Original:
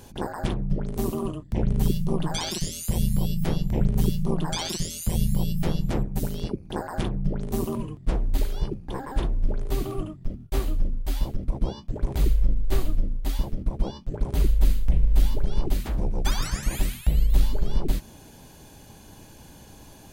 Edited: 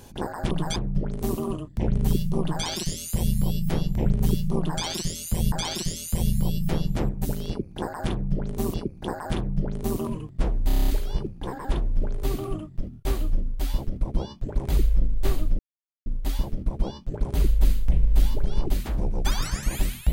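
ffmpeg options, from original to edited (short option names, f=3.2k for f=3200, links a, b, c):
-filter_complex "[0:a]asplit=13[a][b][c][d][e][f][g][h][i][j][k][l][m];[a]atrim=end=0.512[n];[b]atrim=start=2.148:end=2.402[o];[c]atrim=start=0.508:end=5.272[p];[d]atrim=start=4.458:end=7.682[q];[e]atrim=start=6.418:end=8.382[r];[f]atrim=start=8.348:end=8.382[s];[g]atrim=start=8.348:end=8.382[t];[h]atrim=start=8.348:end=8.382[u];[i]atrim=start=8.348:end=8.382[v];[j]atrim=start=8.348:end=8.382[w];[k]atrim=start=8.348:end=8.382[x];[l]atrim=start=8.348:end=13.06,asetpts=PTS-STARTPTS,afade=t=out:st=4.708:d=0.004:c=hsin,apad=pad_dur=0.47[y];[m]atrim=start=13.06,asetpts=PTS-STARTPTS,afade=t=in:d=0.004:c=hsin[z];[n][o]acrossfade=d=0.004:c1=hsin:c2=hsin[aa];[aa][p]acrossfade=d=0.004:c1=hsin:c2=hsin[ab];[ab][q]acrossfade=d=0.004:c1=hsin:c2=hsin[ac];[ac][r]acrossfade=d=0.004:c1=hsin:c2=hsin[ad];[ad][s]acrossfade=d=0.004:c1=hsin:c2=hsin[ae];[ae][t]acrossfade=d=0.004:c1=hsin:c2=hsin[af];[af][u]acrossfade=d=0.004:c1=hsin:c2=hsin[ag];[ag][v]acrossfade=d=0.004:c1=hsin:c2=hsin[ah];[ah][w]acrossfade=d=0.004:c1=hsin:c2=hsin[ai];[ai][x]acrossfade=d=0.004:c1=hsin:c2=hsin[aj];[y][z]concat=n=2:v=0:a=1[ak];[aj][ak]acrossfade=d=0.004:c1=hsin:c2=hsin"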